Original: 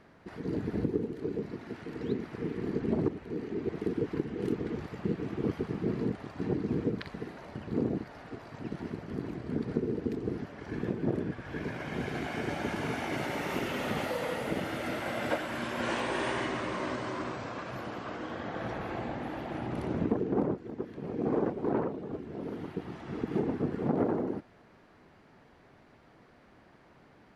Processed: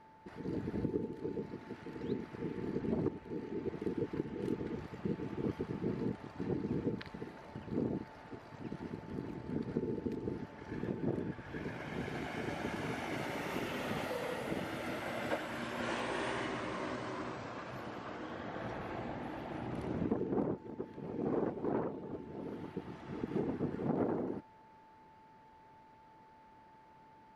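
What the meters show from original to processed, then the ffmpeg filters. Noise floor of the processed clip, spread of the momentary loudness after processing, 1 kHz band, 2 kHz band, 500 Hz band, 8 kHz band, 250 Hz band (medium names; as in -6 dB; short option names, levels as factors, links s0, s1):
-60 dBFS, 9 LU, -5.0 dB, -5.5 dB, -5.5 dB, -5.5 dB, -5.5 dB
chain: -af "aeval=exprs='val(0)+0.00224*sin(2*PI*880*n/s)':c=same,volume=0.531"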